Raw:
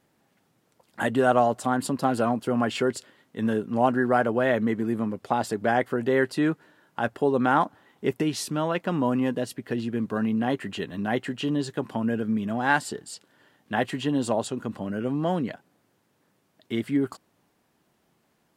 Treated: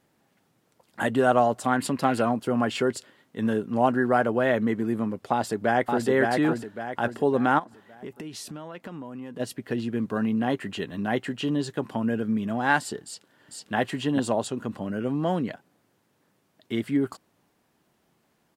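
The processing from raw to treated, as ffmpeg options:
-filter_complex "[0:a]asettb=1/sr,asplit=3[s0][s1][s2];[s0]atrim=end=1.664[s3];[s1]atrim=start=1.66:end=2.22,asetpts=PTS-STARTPTS,afade=t=in:d=0.004:c=qsin,afade=t=out:st=0.556:d=0.004:c=qsin,equalizer=f=2200:w=1.5:g=9.5[s4];[s2]atrim=start=2.216[s5];[s3][s4]acrossfade=d=0.004:c1=hsin:c2=qsin[s6];[s6][s5]acrossfade=d=0.004:c1=qsin:c2=hsin,asplit=2[s7][s8];[s8]afade=t=in:st=5.32:d=0.01,afade=t=out:st=6.07:d=0.01,aecho=0:1:560|1120|1680|2240|2800:0.707946|0.283178|0.113271|0.0453085|0.0181234[s9];[s7][s9]amix=inputs=2:normalize=0,asplit=3[s10][s11][s12];[s10]afade=t=out:st=7.58:d=0.02[s13];[s11]acompressor=threshold=0.0178:ratio=6:attack=3.2:release=140:knee=1:detection=peak,afade=t=in:st=7.58:d=0.02,afade=t=out:st=9.39:d=0.02[s14];[s12]afade=t=in:st=9.39:d=0.02[s15];[s13][s14][s15]amix=inputs=3:normalize=0,asplit=2[s16][s17];[s17]afade=t=in:st=13.03:d=0.01,afade=t=out:st=13.74:d=0.01,aecho=0:1:450|900:0.891251|0.0891251[s18];[s16][s18]amix=inputs=2:normalize=0"

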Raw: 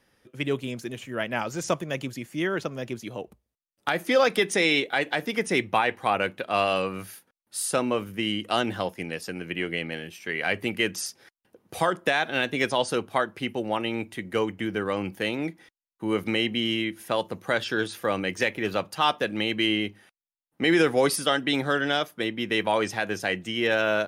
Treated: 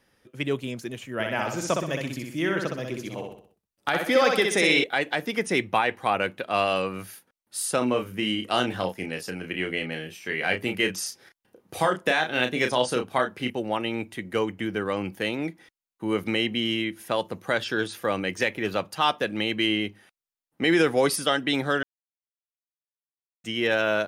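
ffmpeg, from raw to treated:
-filter_complex "[0:a]asettb=1/sr,asplit=3[s0][s1][s2];[s0]atrim=end=1.134[s3];[s1]atrim=start=1.13:end=4.84,asetpts=PTS-STARTPTS,afade=t=in:d=0.004:c=qsin,afade=t=out:st=3.706:d=0.004:c=qsin,aecho=1:1:63|126|189|252|315:0.631|0.271|0.117|0.0502|0.0216,atrim=end_sample=163611[s4];[s2]atrim=start=4.836[s5];[s3][s4]acrossfade=d=0.004:c1=hsin:c2=qsin[s6];[s6][s5]acrossfade=d=0.004:c1=qsin:c2=hsin,asettb=1/sr,asplit=3[s7][s8][s9];[s7]atrim=end=7.784[s10];[s8]atrim=start=7.78:end=13.5,asetpts=PTS-STARTPTS,afade=t=in:d=0.004:c=qsin,afade=t=out:st=5.716:d=0.004:c=qsin,asplit=2[s11][s12];[s12]adelay=32,volume=0.501[s13];[s11][s13]amix=inputs=2:normalize=0,atrim=end_sample=252252[s14];[s9]atrim=start=13.496[s15];[s10][s14]acrossfade=d=0.004:c1=hsin:c2=qsin[s16];[s16][s15]acrossfade=d=0.004:c1=qsin:c2=hsin,asplit=3[s17][s18][s19];[s17]atrim=end=21.83,asetpts=PTS-STARTPTS,afade=t=out:st=21.826:d=0.004:c=hsin[s20];[s18]atrim=start=21.83:end=23.44,asetpts=PTS-STARTPTS,volume=0[s21];[s19]atrim=start=23.44,asetpts=PTS-STARTPTS,afade=t=in:d=0.004:c=hsin[s22];[s20][s21][s22]concat=n=3:v=0:a=1"

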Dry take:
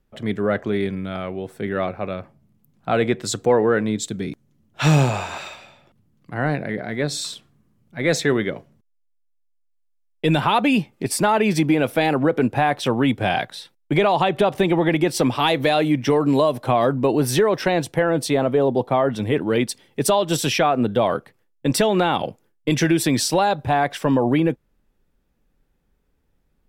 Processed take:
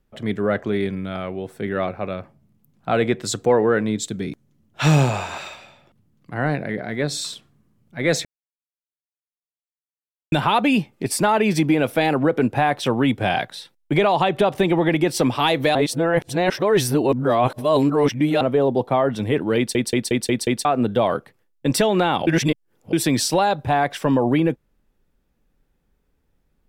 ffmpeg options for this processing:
-filter_complex "[0:a]asplit=13[s0][s1][s2][s3][s4][s5][s6][s7][s8][s9][s10][s11][s12];[s0]atrim=end=8.25,asetpts=PTS-STARTPTS,afade=t=out:st=8.246:d=0.004:c=hsin[s13];[s1]atrim=start=8.25:end=10.32,asetpts=PTS-STARTPTS,volume=0[s14];[s2]atrim=start=10.32:end=15.752,asetpts=PTS-STARTPTS,afade=t=in:d=0.004:c=hsin[s15];[s3]atrim=start=15.748:end=18.412,asetpts=PTS-STARTPTS,areverse[s16];[s4]atrim=start=18.408:end=19.752[s17];[s5]atrim=start=19.568:end=19.752[s18];[s6]atrim=start=19.568:end=19.752[s19];[s7]atrim=start=19.568:end=19.752[s20];[s8]atrim=start=19.568:end=19.752[s21];[s9]atrim=start=19.568:end=19.752[s22];[s10]atrim=start=20.648:end=22.272[s23];[s11]atrim=start=22.268:end=22.932,asetpts=PTS-STARTPTS,areverse[s24];[s12]atrim=start=22.928[s25];[s13][s14][s15]concat=n=3:v=0:a=1[s26];[s26][s16]acrossfade=d=0.004:c1=hsin:c2=hsin[s27];[s27][s17]acrossfade=d=0.004:c1=hsin:c2=hsin[s28];[s28][s18]acrossfade=d=0.004:c1=hsin:c2=hsin[s29];[s29][s19]acrossfade=d=0.004:c1=hsin:c2=hsin[s30];[s30][s20]acrossfade=d=0.004:c1=hsin:c2=hsin[s31];[s31][s21]acrossfade=d=0.004:c1=hsin:c2=hsin[s32];[s32][s22]acrossfade=d=0.004:c1=hsin:c2=hsin[s33];[s33][s23]acrossfade=d=0.004:c1=hsin:c2=hsin[s34];[s34][s24]acrossfade=d=0.004:c1=hsin:c2=hsin[s35];[s35][s25]acrossfade=d=0.004:c1=hsin:c2=hsin"

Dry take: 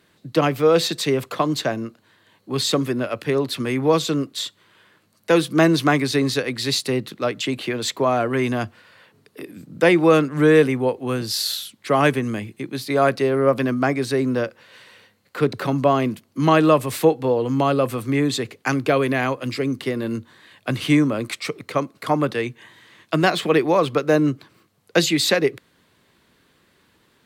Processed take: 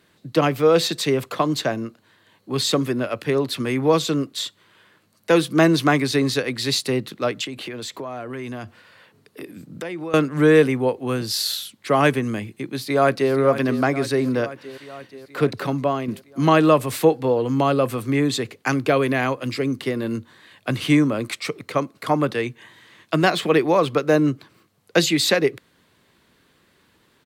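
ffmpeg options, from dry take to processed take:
-filter_complex "[0:a]asettb=1/sr,asplit=3[s0][s1][s2];[s0]atrim=end=7.444[s3];[s1]atrim=start=7.44:end=10.14,asetpts=PTS-STARTPTS,afade=t=in:d=0.004:c=qsin,afade=t=out:st=2.696:d=0.004:c=qsin,acompressor=threshold=0.0355:ratio=5:attack=3.2:release=140:knee=1:detection=peak[s4];[s2]atrim=start=10.136[s5];[s3][s4]acrossfade=d=0.004:c1=hsin:c2=qsin[s6];[s6][s5]acrossfade=d=0.004:c1=qsin:c2=hsin,asplit=2[s7][s8];[s8]afade=t=in:st=12.59:d=0.01,afade=t=out:st=13.33:d=0.01,aecho=0:1:480|960|1440|1920|2400|2880|3360|3840|4320|4800:0.266073|0.186251|0.130376|0.0912629|0.063884|0.0447188|0.0313032|0.0219122|0.0153386|0.010737[s9];[s7][s9]amix=inputs=2:normalize=0,asplit=2[s10][s11];[s10]atrim=end=16.08,asetpts=PTS-STARTPTS,afade=t=out:st=15.5:d=0.58:silence=0.398107[s12];[s11]atrim=start=16.08,asetpts=PTS-STARTPTS,afade=t=in:d=0.004:c=hsin:silence=0.398107[s13];[s12][s13]concat=n=2:v=0:a=1"

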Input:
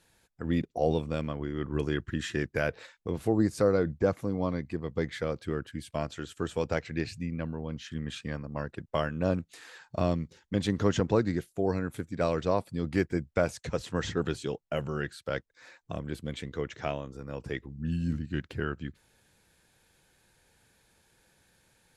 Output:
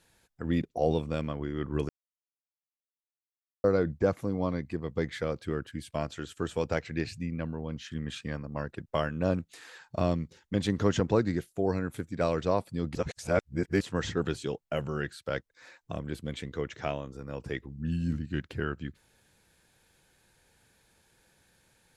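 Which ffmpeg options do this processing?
-filter_complex "[0:a]asplit=5[s0][s1][s2][s3][s4];[s0]atrim=end=1.89,asetpts=PTS-STARTPTS,afade=t=out:st=1.886:d=0.004:c=hsin[s5];[s1]atrim=start=1.89:end=3.64,asetpts=PTS-STARTPTS,volume=0[s6];[s2]atrim=start=3.64:end=12.952,asetpts=PTS-STARTPTS,afade=t=in:d=0.004:c=hsin[s7];[s3]atrim=start=12.948:end=13.812,asetpts=PTS-STARTPTS,areverse[s8];[s4]atrim=start=13.808[s9];[s5][s6][s7]concat=n=3:v=0:a=1[s10];[s10][s8]acrossfade=d=0.004:c1=hsin:c2=hsin[s11];[s11][s9]acrossfade=d=0.004:c1=hsin:c2=hsin"

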